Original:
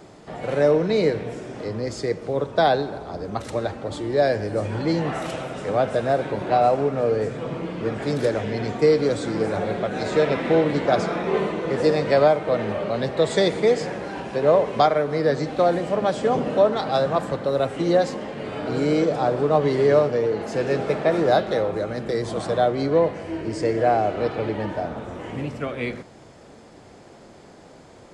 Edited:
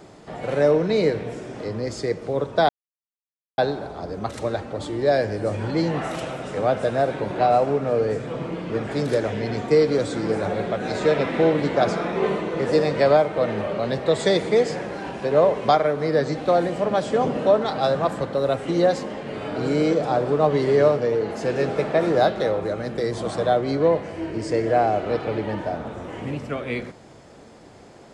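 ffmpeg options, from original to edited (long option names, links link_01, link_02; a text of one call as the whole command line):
ffmpeg -i in.wav -filter_complex "[0:a]asplit=2[link_01][link_02];[link_01]atrim=end=2.69,asetpts=PTS-STARTPTS,afade=type=out:start_time=2.686:duration=0.004:curve=hsin,apad=pad_dur=0.89[link_03];[link_02]atrim=start=2.69,asetpts=PTS-STARTPTS,afade=type=in:duration=0.004:curve=hsin[link_04];[link_03][link_04]concat=n=2:v=0:a=1" out.wav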